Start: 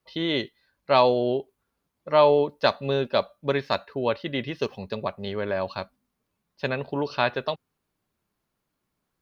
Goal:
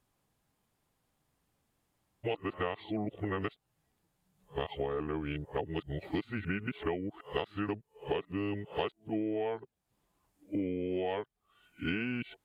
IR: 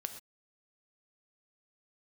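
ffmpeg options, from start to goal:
-af "areverse,acompressor=threshold=0.0251:ratio=16,asetrate=32667,aresample=44100,volume=1.19"

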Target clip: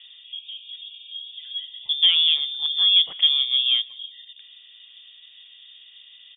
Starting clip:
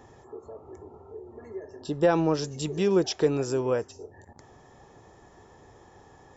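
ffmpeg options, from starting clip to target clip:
-filter_complex "[0:a]asoftclip=type=tanh:threshold=0.211,tiltshelf=f=1400:g=7,asplit=2[s0][s1];[s1]adelay=182,lowpass=f=1800:p=1,volume=0.0631,asplit=2[s2][s3];[s3]adelay=182,lowpass=f=1800:p=1,volume=0.52,asplit=2[s4][s5];[s5]adelay=182,lowpass=f=1800:p=1,volume=0.52[s6];[s2][s4][s6]amix=inputs=3:normalize=0[s7];[s0][s7]amix=inputs=2:normalize=0,lowpass=f=3100:t=q:w=0.5098,lowpass=f=3100:t=q:w=0.6013,lowpass=f=3100:t=q:w=0.9,lowpass=f=3100:t=q:w=2.563,afreqshift=-3700"

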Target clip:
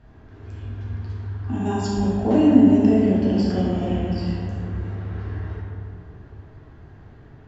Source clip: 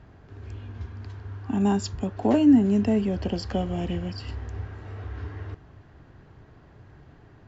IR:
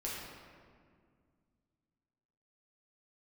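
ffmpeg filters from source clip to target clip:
-filter_complex "[1:a]atrim=start_sample=2205,asetrate=32634,aresample=44100[s0];[0:a][s0]afir=irnorm=-1:irlink=0,volume=0.891"

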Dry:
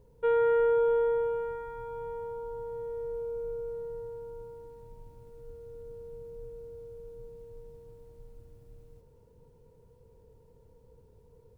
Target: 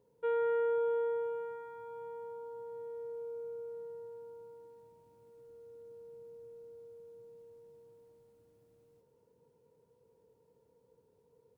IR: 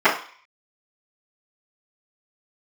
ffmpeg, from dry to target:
-af "highpass=200,volume=0.473"

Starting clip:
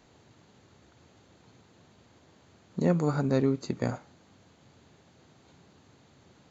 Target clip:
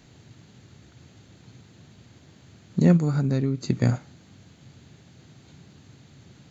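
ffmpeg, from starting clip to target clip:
-filter_complex "[0:a]equalizer=f=125:t=o:w=1:g=6,equalizer=f=500:t=o:w=1:g=-5,equalizer=f=1000:t=o:w=1:g=-7,asplit=3[s0][s1][s2];[s0]afade=t=out:st=2.96:d=0.02[s3];[s1]acompressor=threshold=0.0398:ratio=5,afade=t=in:st=2.96:d=0.02,afade=t=out:st=3.67:d=0.02[s4];[s2]afade=t=in:st=3.67:d=0.02[s5];[s3][s4][s5]amix=inputs=3:normalize=0,volume=2.24"

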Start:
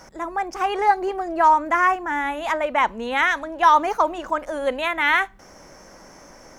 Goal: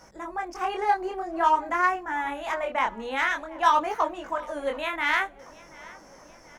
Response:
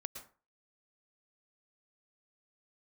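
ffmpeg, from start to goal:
-filter_complex "[0:a]aeval=exprs='0.596*(cos(1*acos(clip(val(0)/0.596,-1,1)))-cos(1*PI/2))+0.0841*(cos(3*acos(clip(val(0)/0.596,-1,1)))-cos(3*PI/2))+0.015*(cos(5*acos(clip(val(0)/0.596,-1,1)))-cos(5*PI/2))':c=same,flanger=delay=19:depth=8:speed=0.5,asplit=2[s0][s1];[s1]adelay=731,lowpass=f=4700:p=1,volume=0.0841,asplit=2[s2][s3];[s3]adelay=731,lowpass=f=4700:p=1,volume=0.55,asplit=2[s4][s5];[s5]adelay=731,lowpass=f=4700:p=1,volume=0.55,asplit=2[s6][s7];[s7]adelay=731,lowpass=f=4700:p=1,volume=0.55[s8];[s0][s2][s4][s6][s8]amix=inputs=5:normalize=0"

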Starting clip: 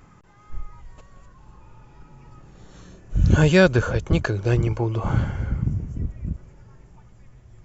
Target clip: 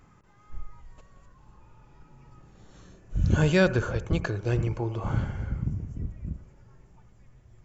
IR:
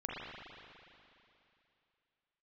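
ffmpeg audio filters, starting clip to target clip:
-filter_complex "[0:a]asplit=2[s0][s1];[1:a]atrim=start_sample=2205,atrim=end_sample=3969,asetrate=34839,aresample=44100[s2];[s1][s2]afir=irnorm=-1:irlink=0,volume=0.316[s3];[s0][s3]amix=inputs=2:normalize=0,volume=0.398"

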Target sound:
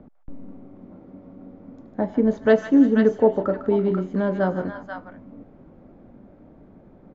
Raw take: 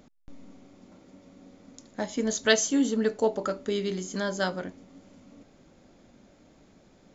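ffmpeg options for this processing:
-filter_complex "[0:a]lowpass=1400,tiltshelf=f=890:g=5,acrossover=split=470|630[s0][s1][s2];[s2]aecho=1:1:97|152|334|488:0.106|0.316|0.141|0.631[s3];[s0][s1][s3]amix=inputs=3:normalize=0,volume=1.78"

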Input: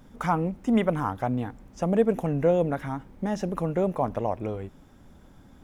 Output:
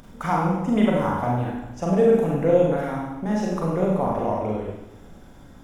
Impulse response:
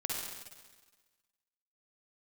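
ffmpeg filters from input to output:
-filter_complex "[0:a]acompressor=mode=upward:threshold=0.00794:ratio=2.5[s0];[1:a]atrim=start_sample=2205,asetrate=61740,aresample=44100[s1];[s0][s1]afir=irnorm=-1:irlink=0,volume=1.5"

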